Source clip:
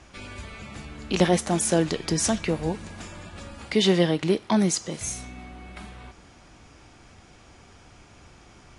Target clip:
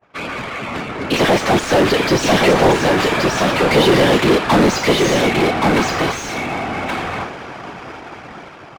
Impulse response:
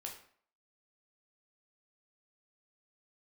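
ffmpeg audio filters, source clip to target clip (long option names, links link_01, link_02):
-filter_complex "[0:a]afftfilt=real='hypot(re,im)*cos(2*PI*random(0))':imag='hypot(re,im)*sin(2*PI*random(1))':win_size=512:overlap=0.75,adynamicequalizer=threshold=0.00316:dfrequency=4100:dqfactor=0.75:tfrequency=4100:tqfactor=0.75:attack=5:release=100:ratio=0.375:range=2:mode=boostabove:tftype=bell,dynaudnorm=framelen=320:gausssize=9:maxgain=9dB,asplit=2[link_01][link_02];[link_02]highpass=frequency=720:poles=1,volume=36dB,asoftclip=type=tanh:threshold=-4dB[link_03];[link_01][link_03]amix=inputs=2:normalize=0,lowpass=frequency=1300:poles=1,volume=-6dB,adynamicsmooth=sensitivity=3.5:basefreq=2700,agate=range=-33dB:threshold=-23dB:ratio=3:detection=peak,aecho=1:1:1125:0.708"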